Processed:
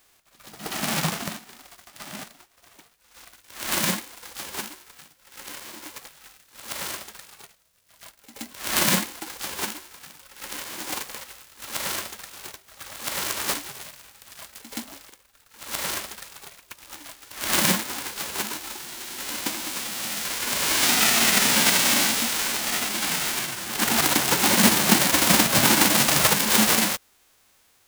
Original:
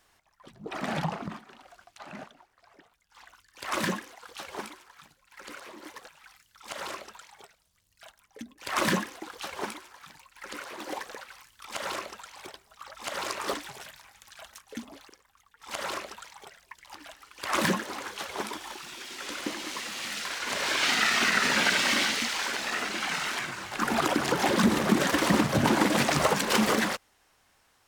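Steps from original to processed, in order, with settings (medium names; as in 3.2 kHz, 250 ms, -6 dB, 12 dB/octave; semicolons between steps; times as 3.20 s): formants flattened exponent 0.3; formant shift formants +3 st; pre-echo 124 ms -12.5 dB; trim +5 dB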